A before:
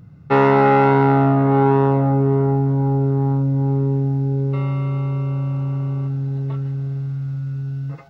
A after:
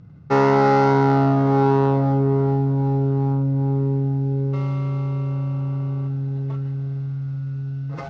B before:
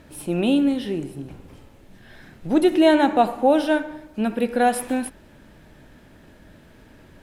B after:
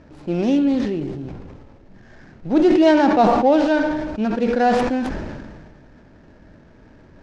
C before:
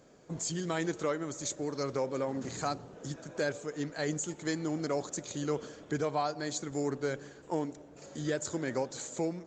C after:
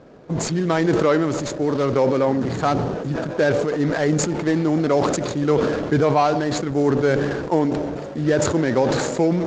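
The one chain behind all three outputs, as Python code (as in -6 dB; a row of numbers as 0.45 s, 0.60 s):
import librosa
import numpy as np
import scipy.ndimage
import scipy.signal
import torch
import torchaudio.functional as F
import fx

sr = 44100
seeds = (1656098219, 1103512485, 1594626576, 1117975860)

y = scipy.ndimage.median_filter(x, 15, mode='constant')
y = scipy.signal.sosfilt(scipy.signal.butter(4, 6300.0, 'lowpass', fs=sr, output='sos'), y)
y = fx.sustainer(y, sr, db_per_s=32.0)
y = y * 10.0 ** (-20 / 20.0) / np.sqrt(np.mean(np.square(y)))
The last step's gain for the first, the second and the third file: -2.0 dB, +1.0 dB, +14.0 dB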